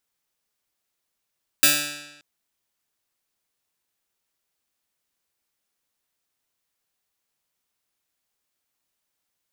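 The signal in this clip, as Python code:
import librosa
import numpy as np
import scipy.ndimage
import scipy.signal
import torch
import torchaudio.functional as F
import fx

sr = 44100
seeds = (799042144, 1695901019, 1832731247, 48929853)

y = fx.pluck(sr, length_s=0.58, note=50, decay_s=1.03, pick=0.14, brightness='bright')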